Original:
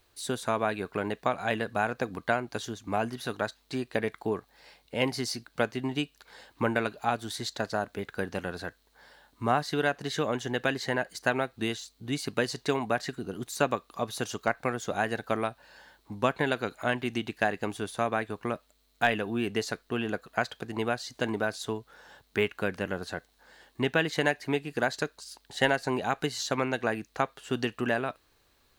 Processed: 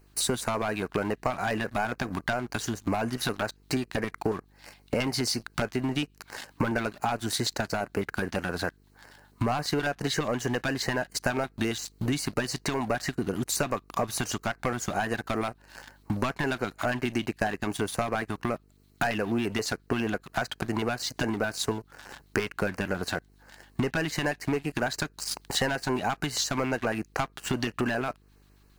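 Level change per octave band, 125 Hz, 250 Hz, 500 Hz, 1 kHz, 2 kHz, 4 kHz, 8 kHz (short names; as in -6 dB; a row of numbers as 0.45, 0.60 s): +4.0, +2.5, -1.0, -0.5, -0.5, +3.0, +7.5 dB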